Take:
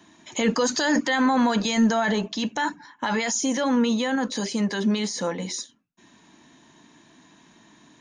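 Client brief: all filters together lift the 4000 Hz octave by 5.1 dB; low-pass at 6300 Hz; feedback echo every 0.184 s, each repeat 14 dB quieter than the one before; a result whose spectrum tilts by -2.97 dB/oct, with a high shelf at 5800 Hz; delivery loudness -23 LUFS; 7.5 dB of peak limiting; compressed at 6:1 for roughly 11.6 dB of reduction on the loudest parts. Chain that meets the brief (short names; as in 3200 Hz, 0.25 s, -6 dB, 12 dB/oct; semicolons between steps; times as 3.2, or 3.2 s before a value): LPF 6300 Hz; bell 4000 Hz +5 dB; high shelf 5800 Hz +5.5 dB; compressor 6:1, threshold -29 dBFS; limiter -24 dBFS; feedback echo 0.184 s, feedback 20%, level -14 dB; gain +10 dB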